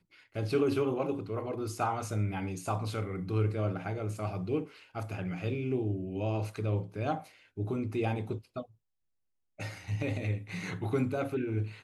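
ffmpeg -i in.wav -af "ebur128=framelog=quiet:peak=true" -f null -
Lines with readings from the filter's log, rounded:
Integrated loudness:
  I:         -33.9 LUFS
  Threshold: -44.1 LUFS
Loudness range:
  LRA:         3.8 LU
  Threshold: -54.7 LUFS
  LRA low:   -36.7 LUFS
  LRA high:  -32.9 LUFS
True peak:
  Peak:      -17.0 dBFS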